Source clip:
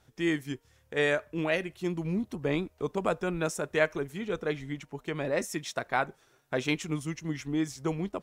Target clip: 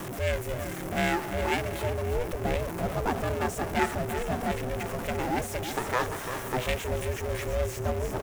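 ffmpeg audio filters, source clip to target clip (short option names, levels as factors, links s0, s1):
-filter_complex "[0:a]aeval=exprs='val(0)+0.5*0.0473*sgn(val(0))':c=same,equalizer=f=5100:w=3.2:g=5,asplit=2[s0][s1];[s1]aecho=0:1:339|678|1017|1356|1695|2034:0.355|0.192|0.103|0.0559|0.0302|0.0163[s2];[s0][s2]amix=inputs=2:normalize=0,aeval=exprs='val(0)*sin(2*PI*250*n/s)':c=same,acrossover=split=220|6000[s3][s4][s5];[s4]adynamicsmooth=sensitivity=4.5:basefreq=1200[s6];[s5]asoftclip=type=tanh:threshold=0.015[s7];[s3][s6][s7]amix=inputs=3:normalize=0"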